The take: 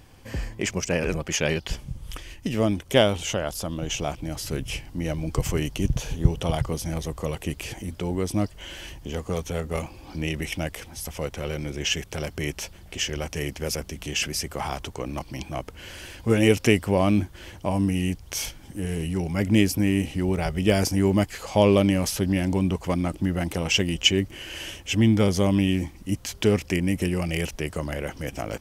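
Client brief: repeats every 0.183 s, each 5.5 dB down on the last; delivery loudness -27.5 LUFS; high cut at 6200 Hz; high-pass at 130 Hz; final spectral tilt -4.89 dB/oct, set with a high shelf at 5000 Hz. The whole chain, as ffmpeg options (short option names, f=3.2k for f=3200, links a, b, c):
-af "highpass=130,lowpass=6.2k,highshelf=f=5k:g=-6.5,aecho=1:1:183|366|549|732|915|1098|1281:0.531|0.281|0.149|0.079|0.0419|0.0222|0.0118,volume=-2dB"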